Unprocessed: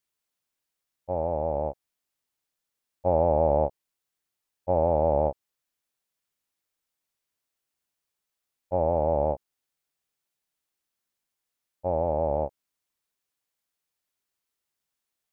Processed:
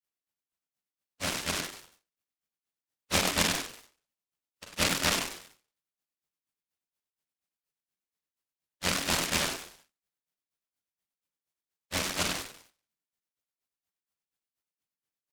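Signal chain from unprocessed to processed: octaver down 1 oct, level -2 dB; grains 0.133 s, grains 4.2/s; fifteen-band EQ 100 Hz -8 dB, 400 Hz -6 dB, 1600 Hz -5 dB; on a send at -2 dB: reverb RT60 0.25 s, pre-delay 37 ms; on the sum: dynamic EQ 200 Hz, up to +4 dB, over -45 dBFS, Q 1.6; HPF 62 Hz 24 dB/oct; notch 970 Hz, Q 18; frequency-shifting echo 97 ms, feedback 34%, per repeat +87 Hz, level -4.5 dB; treble ducked by the level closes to 1400 Hz, closed at -29 dBFS; formant-preserving pitch shift +1 st; noise-modulated delay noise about 2200 Hz, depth 0.44 ms

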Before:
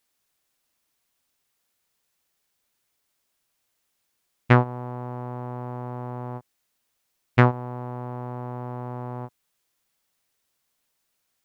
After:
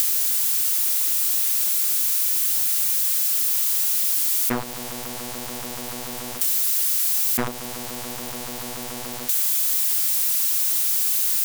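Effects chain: switching spikes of -9 dBFS; compressor, threshold -17 dBFS, peak gain reduction 7 dB; polarity switched at an audio rate 120 Hz; gain -2.5 dB

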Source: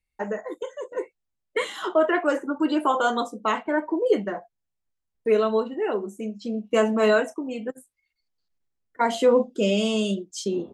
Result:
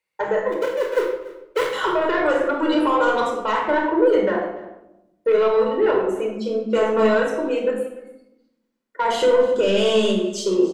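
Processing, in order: 0.52–1.73 switching dead time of 0.25 ms; HPF 440 Hz 12 dB/oct; high shelf 3300 Hz -9.5 dB; limiter -22 dBFS, peak gain reduction 11 dB; soft clip -25 dBFS, distortion -18 dB; on a send: echo 0.291 s -19 dB; on the sum: shoebox room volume 2600 m³, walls furnished, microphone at 4.8 m; gain +8.5 dB

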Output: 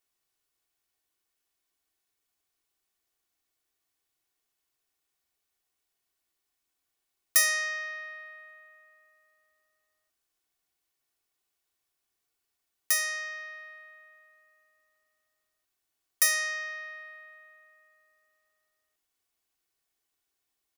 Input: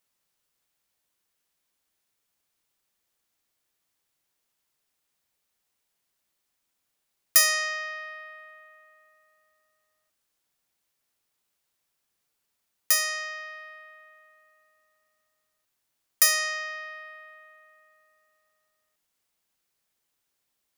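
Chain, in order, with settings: comb 2.7 ms, depth 49%; gain -4.5 dB

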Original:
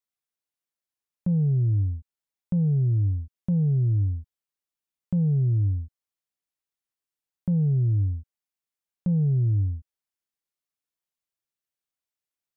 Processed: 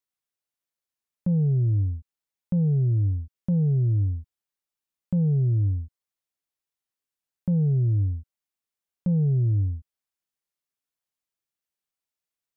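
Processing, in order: dynamic EQ 490 Hz, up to +4 dB, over -41 dBFS, Q 1.1

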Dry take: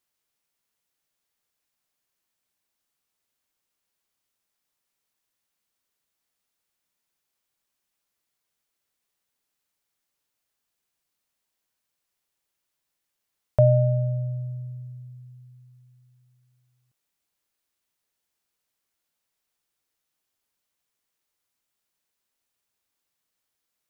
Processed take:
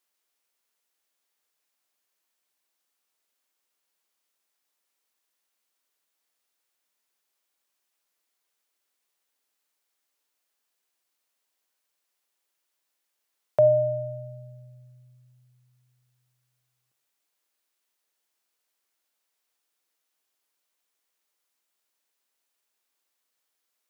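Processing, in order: HPF 310 Hz 12 dB/oct; on a send: reverb RT60 0.45 s, pre-delay 35 ms, DRR 15 dB; on the sum: gain +1.5 dB

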